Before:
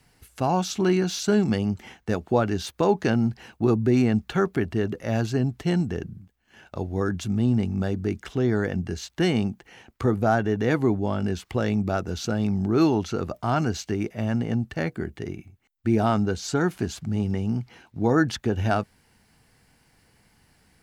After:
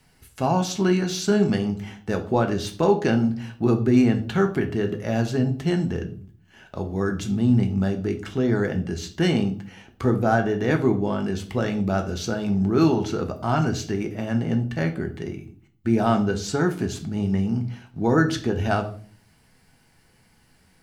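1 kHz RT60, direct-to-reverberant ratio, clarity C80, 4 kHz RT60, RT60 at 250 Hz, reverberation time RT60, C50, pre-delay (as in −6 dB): 0.40 s, 5.0 dB, 17.0 dB, 0.35 s, 0.65 s, 0.45 s, 12.5 dB, 5 ms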